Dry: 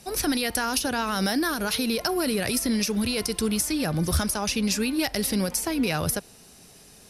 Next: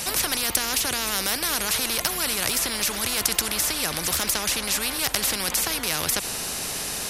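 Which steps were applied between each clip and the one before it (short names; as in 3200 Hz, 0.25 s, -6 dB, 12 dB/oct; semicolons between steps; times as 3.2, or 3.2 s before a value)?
in parallel at -3 dB: negative-ratio compressor -28 dBFS; on the sum: spectral compressor 4:1; gain +4 dB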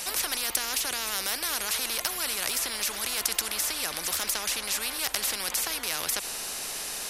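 bell 110 Hz -12 dB 2.6 oct; gain -4.5 dB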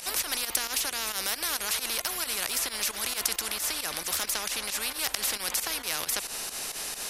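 pump 134 bpm, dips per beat 2, -13 dB, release 88 ms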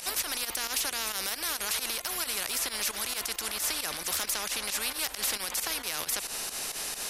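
limiter -18 dBFS, peak gain reduction 9.5 dB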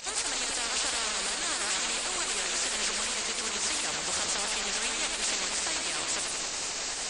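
nonlinear frequency compression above 3600 Hz 1.5:1; warbling echo 92 ms, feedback 77%, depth 163 cents, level -4 dB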